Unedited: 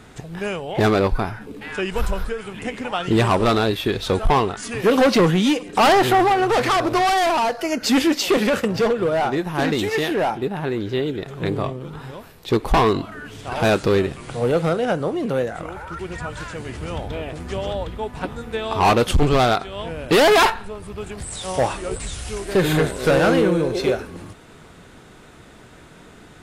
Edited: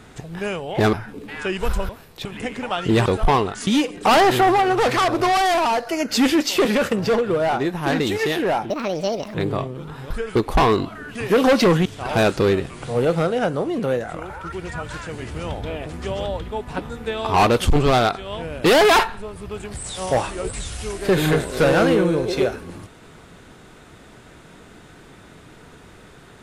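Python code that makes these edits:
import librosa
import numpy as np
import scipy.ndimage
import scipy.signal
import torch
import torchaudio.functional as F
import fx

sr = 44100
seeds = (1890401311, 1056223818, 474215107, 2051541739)

y = fx.edit(x, sr, fx.cut(start_s=0.93, length_s=0.33),
    fx.swap(start_s=2.22, length_s=0.25, other_s=12.16, other_length_s=0.36),
    fx.cut(start_s=3.28, length_s=0.8),
    fx.move(start_s=4.69, length_s=0.7, to_s=13.32),
    fx.speed_span(start_s=10.42, length_s=0.98, speed=1.52), tone=tone)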